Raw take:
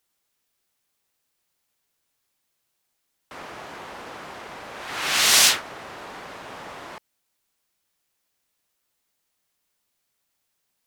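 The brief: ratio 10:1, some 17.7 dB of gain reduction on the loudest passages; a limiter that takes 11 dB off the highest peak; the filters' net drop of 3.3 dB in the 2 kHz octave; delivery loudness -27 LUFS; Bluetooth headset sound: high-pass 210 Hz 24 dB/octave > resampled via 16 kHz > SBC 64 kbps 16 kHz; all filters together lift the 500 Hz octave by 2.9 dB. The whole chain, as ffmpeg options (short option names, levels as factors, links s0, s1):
-af "equalizer=f=500:t=o:g=4,equalizer=f=2000:t=o:g=-4.5,acompressor=threshold=0.0282:ratio=10,alimiter=level_in=2.51:limit=0.0631:level=0:latency=1,volume=0.398,highpass=f=210:w=0.5412,highpass=f=210:w=1.3066,aresample=16000,aresample=44100,volume=5.01" -ar 16000 -c:a sbc -b:a 64k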